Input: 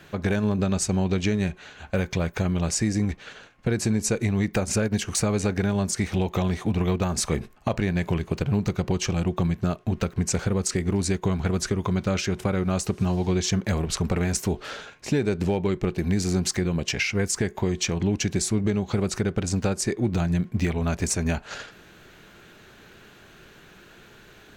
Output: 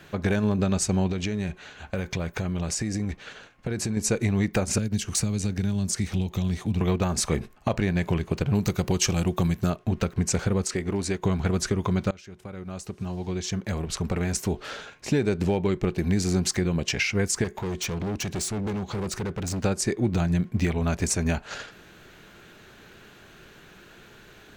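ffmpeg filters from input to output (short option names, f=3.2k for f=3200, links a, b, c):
-filter_complex "[0:a]asettb=1/sr,asplit=3[a][b][c];[a]atrim=end=1.114[d];[b]atrim=start=1.11:end=3.97,asetpts=PTS-STARTPTS,afade=t=in:d=0.004:c=qsin,afade=t=out:st=2.856:d=0.004:c=qsin,acompressor=threshold=-24dB:ratio=6:attack=3.2:release=140:knee=1:detection=peak[e];[c]atrim=start=3.966[f];[d][e]acrossfade=d=0.004:c1=hsin:c2=qsin[g];[g][f]acrossfade=d=0.004:c1=qsin:c2=hsin,asettb=1/sr,asplit=3[h][i][j];[h]atrim=end=4.784[k];[i]atrim=start=4.78:end=6.81,asetpts=PTS-STARTPTS,afade=t=in:d=0.004:c=qsin,afade=t=out:st=2.026:d=0.004:c=qsin,acrossover=split=260|3000[l][m][n];[m]acompressor=threshold=-40dB:ratio=6:attack=3.2:release=140:knee=2.83:detection=peak[o];[l][o][n]amix=inputs=3:normalize=0[p];[j]atrim=start=6.806[q];[k][p]acrossfade=d=0.004:c1=hsin:c2=qsin[r];[r][q]acrossfade=d=0.004:c1=qsin:c2=hsin,asettb=1/sr,asplit=3[s][t][u];[s]atrim=end=8.554[v];[t]atrim=start=8.55:end=9.7,asetpts=PTS-STARTPTS,afade=t=in:d=0.004:c=qsin,afade=t=out:st=1.146:d=0.004:c=qsin,aemphasis=mode=production:type=50kf[w];[u]atrim=start=9.696[x];[v][w]acrossfade=d=0.004:c1=hsin:c2=qsin[y];[y][x]acrossfade=d=0.004:c1=qsin:c2=hsin,asettb=1/sr,asplit=3[z][aa][ab];[z]atrim=end=10.644[ac];[aa]atrim=start=10.64:end=11.2,asetpts=PTS-STARTPTS,afade=t=in:d=0.004:c=qsin,afade=t=out:st=0.556:d=0.004:c=qsin,bass=f=250:g=-6,treble=f=4k:g=-4[ad];[ab]atrim=start=11.196[ae];[ac][ad]acrossfade=d=0.004:c1=hsin:c2=qsin[af];[af][ae]acrossfade=d=0.004:c1=qsin:c2=hsin,asettb=1/sr,asplit=3[ag][ah][ai];[ag]atrim=end=17.444[aj];[ah]atrim=start=17.44:end=19.6,asetpts=PTS-STARTPTS,afade=t=in:d=0.004:c=qsin,afade=t=out:st=2.156:d=0.004:c=qsin,asoftclip=type=hard:threshold=-26.5dB[ak];[ai]atrim=start=19.596[al];[aj][ak]acrossfade=d=0.004:c1=hsin:c2=qsin[am];[am][al]acrossfade=d=0.004:c1=qsin:c2=hsin,asplit=2[an][ao];[an]atrim=end=12.11,asetpts=PTS-STARTPTS,afade=t=out:st=12.106:d=0.004:c=hsin:silence=0.0668344[ap];[ao]atrim=start=12.11,asetpts=PTS-STARTPTS,afade=t=in:d=2.84:silence=0.0668344[aq];[ap][aq]concat=n=2:v=0:a=1"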